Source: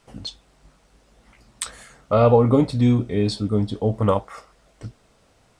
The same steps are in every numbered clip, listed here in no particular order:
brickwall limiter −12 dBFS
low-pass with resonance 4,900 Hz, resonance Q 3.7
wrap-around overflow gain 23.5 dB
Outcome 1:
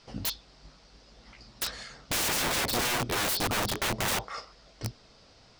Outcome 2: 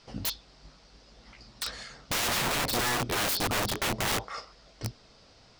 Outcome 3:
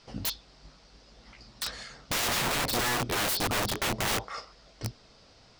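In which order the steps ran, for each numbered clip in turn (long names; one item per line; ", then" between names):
low-pass with resonance, then wrap-around overflow, then brickwall limiter
low-pass with resonance, then brickwall limiter, then wrap-around overflow
brickwall limiter, then low-pass with resonance, then wrap-around overflow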